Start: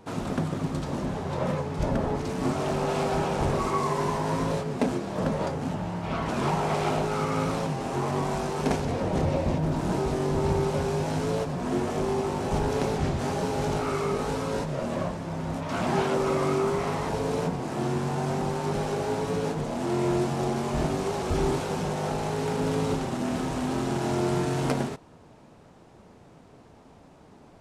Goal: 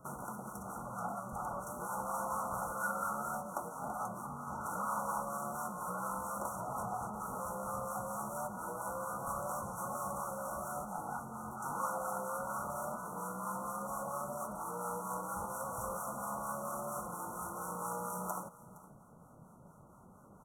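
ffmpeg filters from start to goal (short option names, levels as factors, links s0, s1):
-filter_complex "[0:a]afftfilt=real='re*(1-between(b*sr/4096,1100,4100))':imag='im*(1-between(b*sr/4096,1100,4100))':win_size=4096:overlap=0.75,acrossover=split=570[s0][s1];[s0]aeval=exprs='val(0)*(1-0.5/2+0.5/2*cos(2*PI*3.2*n/s))':c=same[s2];[s1]aeval=exprs='val(0)*(1-0.5/2-0.5/2*cos(2*PI*3.2*n/s))':c=same[s3];[s2][s3]amix=inputs=2:normalize=0,acrossover=split=490|4200[s4][s5][s6];[s4]acompressor=threshold=0.00708:ratio=16[s7];[s7][s5][s6]amix=inputs=3:normalize=0,equalizer=f=125:t=o:w=1:g=7,equalizer=f=250:t=o:w=1:g=-9,equalizer=f=4000:t=o:w=1:g=-7,equalizer=f=8000:t=o:w=1:g=6,asplit=2[s8][s9];[s9]aecho=0:1:629:0.106[s10];[s8][s10]amix=inputs=2:normalize=0,asetrate=59535,aresample=44100,volume=0.708"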